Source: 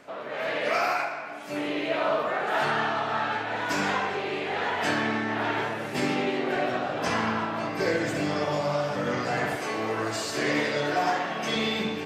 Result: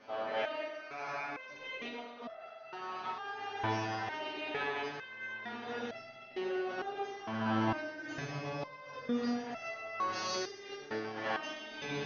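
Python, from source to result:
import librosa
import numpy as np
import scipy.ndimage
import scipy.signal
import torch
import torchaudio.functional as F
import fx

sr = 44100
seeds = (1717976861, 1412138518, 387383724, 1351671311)

p1 = scipy.signal.sosfilt(scipy.signal.cheby1(10, 1.0, 6400.0, 'lowpass', fs=sr, output='sos'), x)
p2 = fx.over_compress(p1, sr, threshold_db=-31.0, ratio=-0.5)
p3 = p2 + fx.echo_feedback(p2, sr, ms=127, feedback_pct=53, wet_db=-10, dry=0)
p4 = fx.rev_fdn(p3, sr, rt60_s=0.81, lf_ratio=1.25, hf_ratio=0.95, size_ms=23.0, drr_db=-1.0)
p5 = fx.resonator_held(p4, sr, hz=2.2, low_hz=110.0, high_hz=670.0)
y = p5 * librosa.db_to_amplitude(1.5)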